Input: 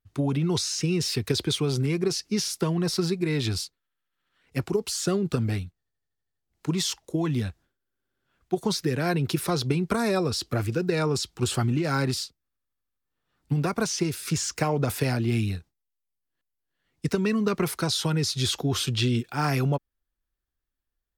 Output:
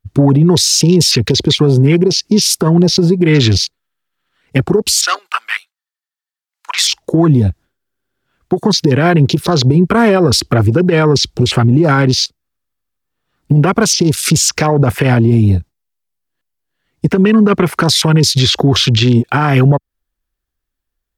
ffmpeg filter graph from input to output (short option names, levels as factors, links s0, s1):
-filter_complex "[0:a]asettb=1/sr,asplit=3[s0][s1][s2];[s0]atrim=end=5.014[s3];[s1]atrim=start=5.01:end=6.84,asetpts=PTS-STARTPTS,afade=t=in:d=0.004:c=qsin,afade=t=out:st=1.826:d=0.004:c=qsin,agate=range=0.501:threshold=0.0158:ratio=16:release=100:detection=peak,highpass=f=960:w=0.5412,highpass=f=960:w=1.3066[s4];[s2]atrim=start=6.836[s5];[s3][s4]acrossfade=d=0.004:c1=hsin:c2=qsin[s6];[s6][s5]acrossfade=d=0.004:c1=qsin:c2=hsin,acompressor=threshold=0.0282:ratio=3,afwtdn=0.00794,alimiter=level_in=17.8:limit=0.891:release=50:level=0:latency=1,volume=0.891"